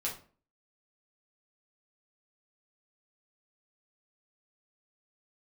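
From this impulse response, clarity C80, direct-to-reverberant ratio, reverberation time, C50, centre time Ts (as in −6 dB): 14.0 dB, −4.5 dB, 0.40 s, 8.0 dB, 23 ms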